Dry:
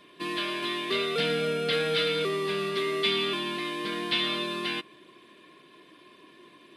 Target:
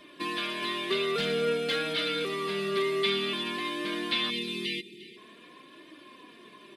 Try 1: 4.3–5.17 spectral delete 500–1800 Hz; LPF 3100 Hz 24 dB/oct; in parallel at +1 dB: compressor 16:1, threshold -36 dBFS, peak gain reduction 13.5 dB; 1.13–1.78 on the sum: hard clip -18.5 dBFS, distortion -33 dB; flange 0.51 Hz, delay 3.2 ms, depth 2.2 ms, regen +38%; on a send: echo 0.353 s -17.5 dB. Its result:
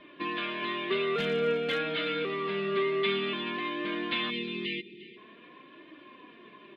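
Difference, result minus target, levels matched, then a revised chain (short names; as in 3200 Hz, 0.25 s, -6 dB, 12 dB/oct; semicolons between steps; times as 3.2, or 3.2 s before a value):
4000 Hz band -3.5 dB
4.3–5.17 spectral delete 500–1800 Hz; in parallel at +1 dB: compressor 16:1, threshold -36 dBFS, peak gain reduction 15 dB; 1.13–1.78 on the sum: hard clip -18.5 dBFS, distortion -30 dB; flange 0.51 Hz, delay 3.2 ms, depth 2.2 ms, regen +38%; on a send: echo 0.353 s -17.5 dB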